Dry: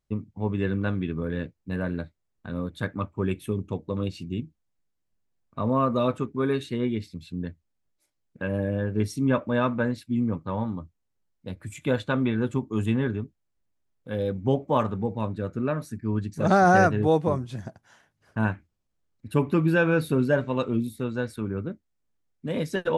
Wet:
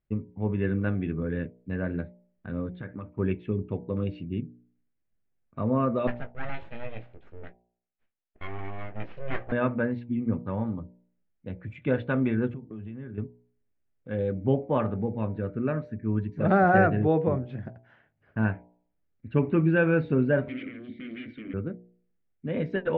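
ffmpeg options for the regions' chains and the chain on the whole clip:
-filter_complex "[0:a]asettb=1/sr,asplit=3[a][b][c];[a]atrim=end=2.744[d];[b]atrim=start=2.74:end=3.19,asetpts=PTS-STARTPTS,afade=t=in:d=0.004:c=qsin,afade=t=out:st=0.446:d=0.004:c=qsin,lowpass=4.1k,acompressor=threshold=-32dB:ratio=5:attack=3.2:release=140:knee=1:detection=peak[e];[c]atrim=start=3.186[f];[d][e]acrossfade=d=0.004:c1=hsin:c2=qsin[g];[g][f]acrossfade=d=0.004:c1=qsin:c2=hsin,asettb=1/sr,asplit=3[h][i][j];[h]atrim=end=6.074[k];[i]atrim=start=6.07:end=9.52,asetpts=PTS-STARTPTS,afade=t=in:d=0.004:c=qsin,afade=t=out:st=3.446:d=0.004:c=qsin,highpass=f=530:p=1,aeval=exprs='abs(val(0))':c=same,asplit=2[l][m];[m]adelay=18,volume=-10dB[n];[l][n]amix=inputs=2:normalize=0,atrim=end_sample=152145[o];[j]atrim=start=9.516[p];[k][o]acrossfade=d=0.004:c1=hsin:c2=qsin[q];[q][p]acrossfade=d=0.004:c1=qsin:c2=hsin,asettb=1/sr,asplit=3[r][s][t];[r]atrim=end=12.494[u];[s]atrim=start=12.49:end=13.18,asetpts=PTS-STARTPTS,afade=t=in:d=0.004:c=qsin,afade=t=out:st=0.686:d=0.004:c=qsin,equalizer=f=170:w=1.2:g=5.5,acompressor=threshold=-35dB:ratio=10:attack=3.2:release=140:knee=1:detection=peak[v];[t]atrim=start=13.176[w];[u][v]acrossfade=d=0.004:c1=hsin:c2=qsin[x];[x][w]acrossfade=d=0.004:c1=qsin:c2=hsin,asettb=1/sr,asplit=3[y][z][aa];[y]atrim=end=20.484[ab];[z]atrim=start=20.48:end=21.54,asetpts=PTS-STARTPTS,afade=t=in:d=0.004:c=qsin,afade=t=out:st=1.056:d=0.004:c=qsin,acompressor=threshold=-29dB:ratio=4:attack=3.2:release=140:knee=1:detection=peak,aeval=exprs='0.0891*sin(PI/2*7.08*val(0)/0.0891)':c=same,asplit=3[ac][ad][ae];[ac]bandpass=f=270:t=q:w=8,volume=0dB[af];[ad]bandpass=f=2.29k:t=q:w=8,volume=-6dB[ag];[ae]bandpass=f=3.01k:t=q:w=8,volume=-9dB[ah];[af][ag][ah]amix=inputs=3:normalize=0[ai];[aa]atrim=start=21.536[aj];[ab][ai]acrossfade=d=0.004:c1=hsin:c2=qsin[ak];[ak][aj]acrossfade=d=0.004:c1=qsin:c2=hsin,lowpass=f=2.5k:w=0.5412,lowpass=f=2.5k:w=1.3066,equalizer=f=1k:t=o:w=0.68:g=-7,bandreject=f=59.97:t=h:w=4,bandreject=f=119.94:t=h:w=4,bandreject=f=179.91:t=h:w=4,bandreject=f=239.88:t=h:w=4,bandreject=f=299.85:t=h:w=4,bandreject=f=359.82:t=h:w=4,bandreject=f=419.79:t=h:w=4,bandreject=f=479.76:t=h:w=4,bandreject=f=539.73:t=h:w=4,bandreject=f=599.7:t=h:w=4,bandreject=f=659.67:t=h:w=4,bandreject=f=719.64:t=h:w=4,bandreject=f=779.61:t=h:w=4,bandreject=f=839.58:t=h:w=4,bandreject=f=899.55:t=h:w=4,bandreject=f=959.52:t=h:w=4"

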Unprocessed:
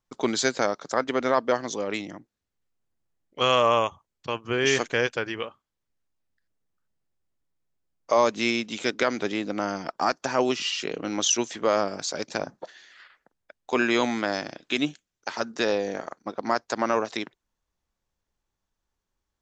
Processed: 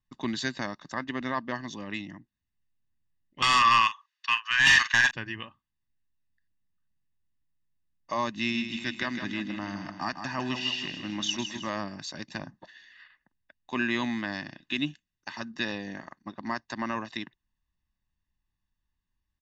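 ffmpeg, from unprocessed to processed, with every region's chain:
-filter_complex "[0:a]asettb=1/sr,asplit=3[a][b][c];[a]atrim=end=3.424[d];[b]atrim=start=3.42:end=5.11,asetpts=PTS-STARTPTS,afade=t=in:d=0.004:c=qsin,afade=t=out:st=1.686:d=0.004:c=qsin,asuperpass=centerf=2800:order=8:qfactor=0.5,aeval=exprs='0.299*sin(PI/2*3.55*val(0)/0.299)':c=same,asplit=2[e][f];[f]adelay=44,volume=-13dB[g];[e][g]amix=inputs=2:normalize=0,atrim=end_sample=74529[h];[c]atrim=start=5.106[i];[d][h]acrossfade=d=0.004:c1=hsin:c2=qsin[j];[j][i]acrossfade=d=0.004:c1=qsin:c2=hsin,asettb=1/sr,asplit=3[k][l][m];[k]atrim=end=8.344[n];[l]atrim=start=8.34:end=11.7,asetpts=PTS-STARTPTS,afade=t=in:d=0.004:c=qsin,afade=t=out:st=3.356:d=0.004:c=qsin,equalizer=f=440:t=o:w=0.2:g=-14.5,aecho=1:1:158|316|474|632|790|948:0.398|0.195|0.0956|0.0468|0.023|0.0112,atrim=end_sample=148176[o];[m]atrim=start=11.696[p];[n][o]acrossfade=d=0.004:c1=hsin:c2=qsin[q];[q][p]acrossfade=d=0.004:c1=qsin:c2=hsin,lowpass=3.7k,equalizer=f=740:t=o:w=1:g=-12.5,aecho=1:1:1.1:0.79,volume=-3dB"

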